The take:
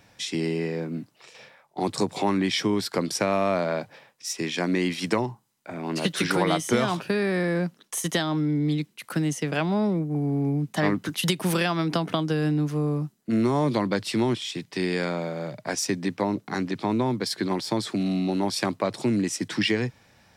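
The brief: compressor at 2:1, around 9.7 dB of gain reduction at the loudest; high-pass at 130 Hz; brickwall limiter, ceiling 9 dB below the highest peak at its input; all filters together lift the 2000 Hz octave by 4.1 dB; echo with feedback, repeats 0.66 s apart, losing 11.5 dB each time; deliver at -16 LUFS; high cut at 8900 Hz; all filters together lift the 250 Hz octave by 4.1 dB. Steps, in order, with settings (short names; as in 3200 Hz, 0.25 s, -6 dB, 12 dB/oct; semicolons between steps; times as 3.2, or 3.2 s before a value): HPF 130 Hz; LPF 8900 Hz; bell 250 Hz +6 dB; bell 2000 Hz +5 dB; compressor 2:1, threshold -34 dBFS; limiter -23 dBFS; feedback echo 0.66 s, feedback 27%, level -11.5 dB; gain +16.5 dB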